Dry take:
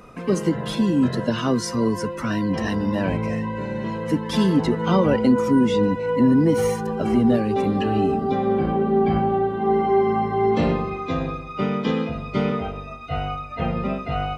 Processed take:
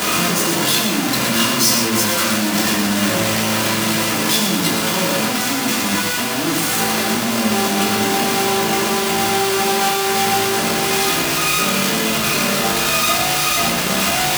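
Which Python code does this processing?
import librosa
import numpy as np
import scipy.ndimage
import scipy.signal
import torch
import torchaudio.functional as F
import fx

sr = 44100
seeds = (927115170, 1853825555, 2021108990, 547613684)

y = np.sign(x) * np.sqrt(np.mean(np.square(x)))
y = scipy.signal.sosfilt(scipy.signal.butter(2, 140.0, 'highpass', fs=sr, output='sos'), y)
y = fx.high_shelf(y, sr, hz=2100.0, db=11.0)
y = y + 10.0 ** (-6.5 / 20.0) * np.pad(y, (int(118 * sr / 1000.0), 0))[:len(y)]
y = fx.room_shoebox(y, sr, seeds[0], volume_m3=470.0, walls='furnished', distance_m=3.1)
y = y * 10.0 ** (-5.0 / 20.0)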